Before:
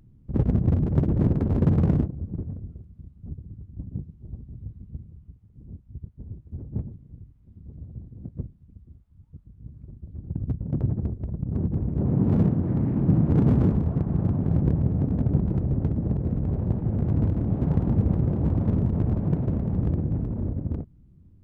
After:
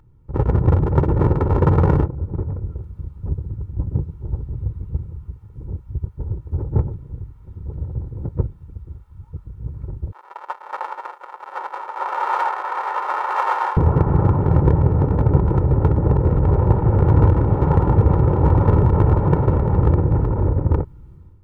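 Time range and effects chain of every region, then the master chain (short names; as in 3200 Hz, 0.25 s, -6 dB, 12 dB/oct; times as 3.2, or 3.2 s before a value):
10.12–13.77 minimum comb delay 5.5 ms + HPF 810 Hz 24 dB/oct
whole clip: bell 1100 Hz +14 dB 1.4 oct; AGC gain up to 11.5 dB; comb 2.2 ms, depth 65%; gain -1 dB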